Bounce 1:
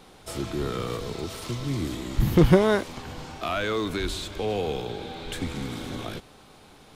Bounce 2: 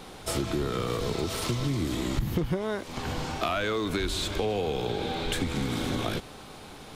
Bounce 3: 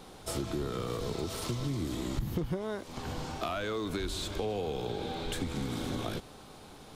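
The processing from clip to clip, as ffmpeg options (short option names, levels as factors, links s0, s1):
-af "acompressor=threshold=0.0282:ratio=12,volume=2.11"
-af "equalizer=f=2200:w=1.1:g=-4,volume=0.562"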